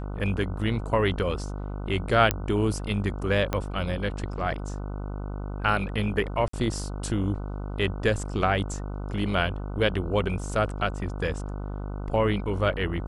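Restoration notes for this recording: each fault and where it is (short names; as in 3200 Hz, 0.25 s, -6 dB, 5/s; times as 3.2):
buzz 50 Hz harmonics 30 -33 dBFS
2.31 pop -6 dBFS
3.53 pop -12 dBFS
6.48–6.53 gap 54 ms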